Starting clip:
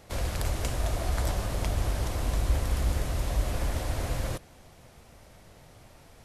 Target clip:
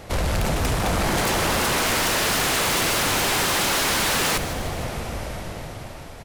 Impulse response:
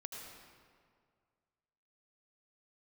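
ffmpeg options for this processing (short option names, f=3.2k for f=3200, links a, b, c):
-af "bass=f=250:g=-1,treble=f=4k:g=-4,dynaudnorm=f=320:g=9:m=15dB,aeval=exprs='0.188*sin(PI/2*5.01*val(0)/0.188)':c=same,aecho=1:1:155|310|465|620|775:0.237|0.126|0.0666|0.0353|0.0187,volume=-4.5dB"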